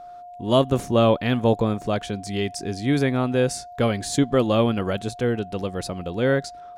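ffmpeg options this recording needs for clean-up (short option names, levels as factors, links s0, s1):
-af "bandreject=f=710:w=30"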